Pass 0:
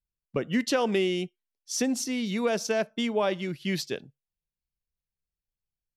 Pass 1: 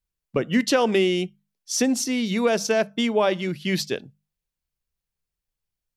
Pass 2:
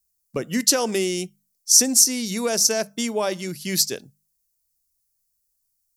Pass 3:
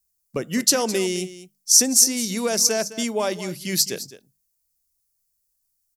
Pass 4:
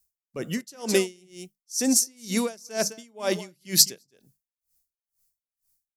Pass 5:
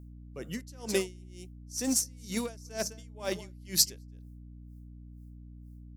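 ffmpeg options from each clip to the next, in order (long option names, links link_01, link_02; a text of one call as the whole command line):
ffmpeg -i in.wav -af "bandreject=frequency=50:width_type=h:width=6,bandreject=frequency=100:width_type=h:width=6,bandreject=frequency=150:width_type=h:width=6,bandreject=frequency=200:width_type=h:width=6,volume=5.5dB" out.wav
ffmpeg -i in.wav -af "aexciter=amount=9.1:drive=3:freq=4700,volume=-3.5dB" out.wav
ffmpeg -i in.wav -af "aecho=1:1:210:0.178" out.wav
ffmpeg -i in.wav -af "aeval=exprs='val(0)*pow(10,-33*(0.5-0.5*cos(2*PI*2.1*n/s))/20)':channel_layout=same,volume=3.5dB" out.wav
ffmpeg -i in.wav -filter_complex "[0:a]asplit=2[link_01][link_02];[link_02]aeval=exprs='val(0)*gte(abs(val(0)),0.112)':channel_layout=same,volume=-12dB[link_03];[link_01][link_03]amix=inputs=2:normalize=0,aeval=exprs='val(0)+0.0126*(sin(2*PI*60*n/s)+sin(2*PI*2*60*n/s)/2+sin(2*PI*3*60*n/s)/3+sin(2*PI*4*60*n/s)/4+sin(2*PI*5*60*n/s)/5)':channel_layout=same,volume=-8.5dB" out.wav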